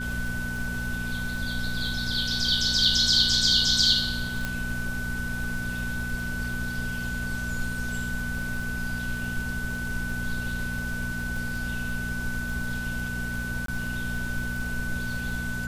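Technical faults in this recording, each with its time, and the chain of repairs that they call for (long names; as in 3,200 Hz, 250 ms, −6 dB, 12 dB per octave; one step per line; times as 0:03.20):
surface crackle 22 per second −33 dBFS
mains hum 60 Hz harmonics 4 −34 dBFS
whistle 1,500 Hz −32 dBFS
0:04.45: click −15 dBFS
0:13.66–0:13.68: drop-out 23 ms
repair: click removal
hum removal 60 Hz, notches 4
notch filter 1,500 Hz, Q 30
repair the gap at 0:13.66, 23 ms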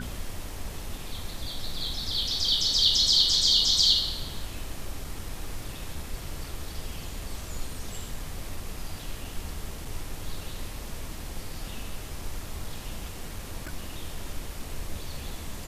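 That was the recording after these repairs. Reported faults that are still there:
none of them is left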